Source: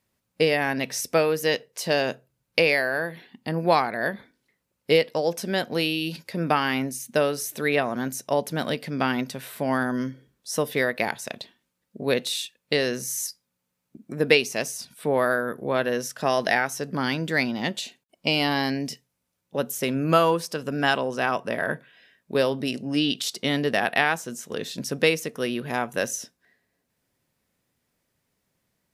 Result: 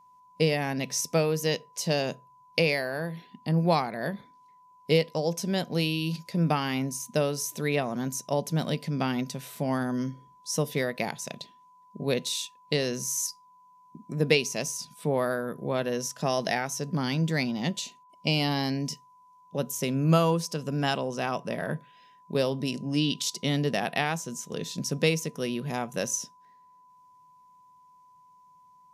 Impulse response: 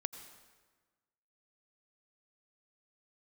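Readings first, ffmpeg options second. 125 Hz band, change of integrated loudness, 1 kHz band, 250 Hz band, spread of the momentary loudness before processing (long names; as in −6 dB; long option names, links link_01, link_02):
+4.0 dB, −3.5 dB, −5.5 dB, −1.5 dB, 11 LU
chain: -af "aeval=exprs='val(0)+0.00355*sin(2*PI*1000*n/s)':channel_layout=same,equalizer=frequency=160:width_type=o:width=0.67:gain=10,equalizer=frequency=1600:width_type=o:width=0.67:gain=-6,equalizer=frequency=6300:width_type=o:width=0.67:gain=7,volume=-4.5dB"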